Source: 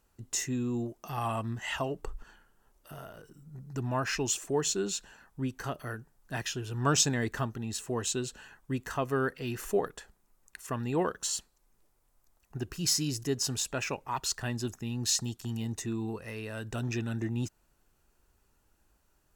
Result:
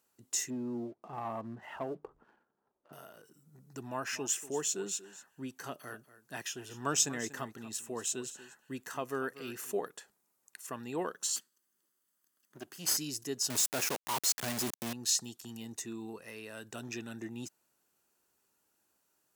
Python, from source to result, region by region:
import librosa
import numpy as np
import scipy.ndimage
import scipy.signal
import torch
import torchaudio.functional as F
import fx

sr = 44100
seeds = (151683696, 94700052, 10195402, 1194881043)

y = fx.chain(x, sr, fx.lowpass(hz=1000.0, slope=12),
    fx.hum_notches(base_hz=50, count=3),
    fx.leveller(passes=1), at=(0.5, 2.93))
y = fx.chain(y, sr, fx.dynamic_eq(hz=4300.0, q=3.1, threshold_db=-52.0, ratio=4.0, max_db=-8),
    fx.echo_single(ms=239, db=-15.5), at=(3.89, 9.72))
y = fx.chain(y, sr, fx.lower_of_two(delay_ms=0.64),
    fx.highpass(hz=160.0, slope=12),
    fx.notch(hz=470.0, q=6.0), at=(11.36, 12.97))
y = fx.chain(y, sr, fx.peak_eq(hz=2700.0, db=-8.0, octaves=1.3),
    fx.quant_companded(bits=2), at=(13.5, 14.93))
y = scipy.signal.sosfilt(scipy.signal.butter(2, 210.0, 'highpass', fs=sr, output='sos'), y)
y = fx.high_shelf(y, sr, hz=4400.0, db=7.5)
y = F.gain(torch.from_numpy(y), -6.0).numpy()